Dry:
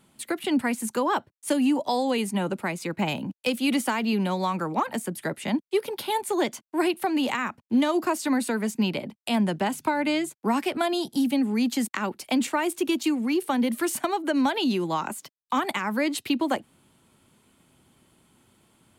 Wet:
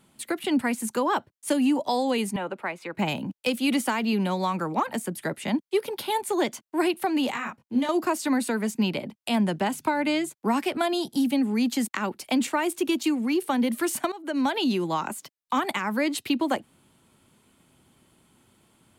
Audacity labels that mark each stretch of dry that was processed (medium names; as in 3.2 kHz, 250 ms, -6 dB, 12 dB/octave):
2.360000	2.950000	three-band isolator lows -13 dB, under 400 Hz, highs -15 dB, over 3.3 kHz
7.310000	7.890000	detune thickener each way 17 cents
14.120000	14.650000	fade in equal-power, from -19 dB